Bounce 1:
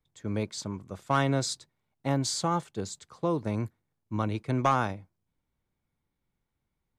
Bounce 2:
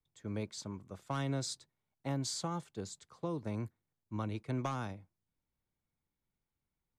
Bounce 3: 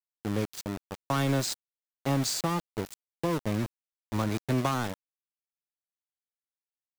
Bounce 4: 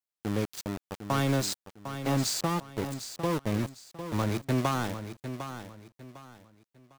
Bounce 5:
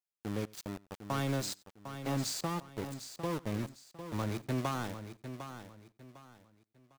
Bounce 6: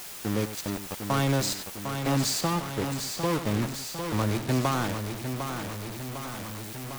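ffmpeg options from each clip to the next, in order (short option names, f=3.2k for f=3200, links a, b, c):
-filter_complex "[0:a]acrossover=split=310|3000[a][b][c];[b]acompressor=threshold=-31dB:ratio=3[d];[a][d][c]amix=inputs=3:normalize=0,volume=-7.5dB"
-af "aeval=exprs='val(0)*gte(abs(val(0)),0.0106)':c=same,volume=9dB"
-af "aecho=1:1:753|1506|2259:0.316|0.0949|0.0285"
-filter_complex "[0:a]asplit=2[a][b];[b]adelay=93.29,volume=-23dB,highshelf=f=4k:g=-2.1[c];[a][c]amix=inputs=2:normalize=0,volume=-6.5dB"
-af "aeval=exprs='val(0)+0.5*0.0141*sgn(val(0))':c=same,volume=6.5dB"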